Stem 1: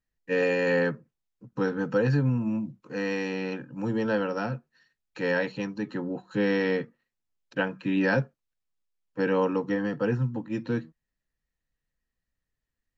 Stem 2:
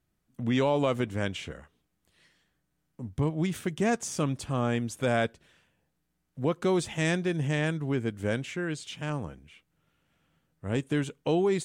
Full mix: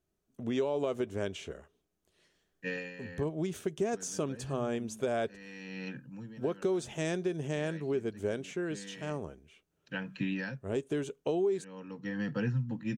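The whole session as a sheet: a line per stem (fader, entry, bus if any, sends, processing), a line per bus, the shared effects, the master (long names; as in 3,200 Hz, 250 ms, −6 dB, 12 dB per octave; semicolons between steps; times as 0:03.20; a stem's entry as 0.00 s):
+0.5 dB, 2.35 s, no send, flat-topped bell 620 Hz −9 dB 2.5 octaves; automatic ducking −19 dB, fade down 0.40 s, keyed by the second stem
−6.0 dB, 0.00 s, no send, thirty-one-band graphic EQ 125 Hz −6 dB, 400 Hz +12 dB, 630 Hz +6 dB, 2,000 Hz −4 dB, 6,300 Hz +5 dB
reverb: not used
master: downward compressor 4 to 1, threshold −28 dBFS, peak gain reduction 9.5 dB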